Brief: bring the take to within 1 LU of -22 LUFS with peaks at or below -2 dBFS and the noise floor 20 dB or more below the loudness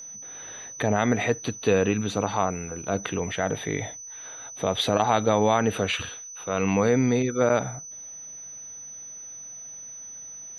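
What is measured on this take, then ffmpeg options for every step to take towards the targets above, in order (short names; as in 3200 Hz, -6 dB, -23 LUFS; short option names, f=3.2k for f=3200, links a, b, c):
steady tone 6000 Hz; tone level -38 dBFS; loudness -25.0 LUFS; peak -7.0 dBFS; loudness target -22.0 LUFS
-> -af "bandreject=f=6k:w=30"
-af "volume=3dB"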